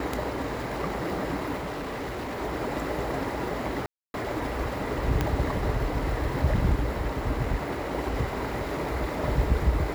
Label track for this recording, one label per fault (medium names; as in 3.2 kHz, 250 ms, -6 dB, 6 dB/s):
1.570000	2.420000	clipped -30 dBFS
3.860000	4.140000	dropout 281 ms
5.210000	5.210000	pop -11 dBFS